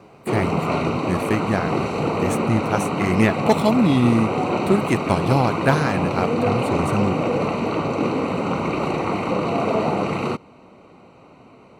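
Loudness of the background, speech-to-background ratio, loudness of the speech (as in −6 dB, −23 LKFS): −23.0 LKFS, 0.5 dB, −22.5 LKFS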